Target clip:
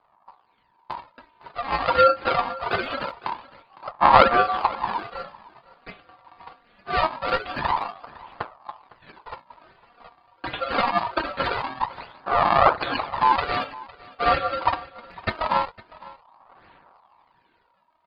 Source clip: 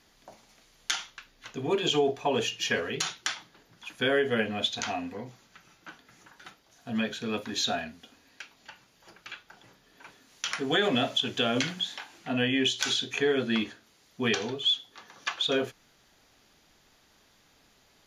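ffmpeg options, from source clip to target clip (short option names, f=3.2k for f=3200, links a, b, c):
-filter_complex "[0:a]aecho=1:1:5.1:0.98,dynaudnorm=f=190:g=13:m=12.5dB,aresample=8000,acrusher=samples=9:mix=1:aa=0.000001:lfo=1:lforange=14.4:lforate=1.3,aresample=44100,aphaser=in_gain=1:out_gain=1:delay=4.7:decay=0.61:speed=0.24:type=sinusoidal,aeval=exprs='val(0)*sin(2*PI*950*n/s)':c=same,asplit=2[a][b];[b]aecho=0:1:507:0.0944[c];[a][c]amix=inputs=2:normalize=0,volume=-6.5dB"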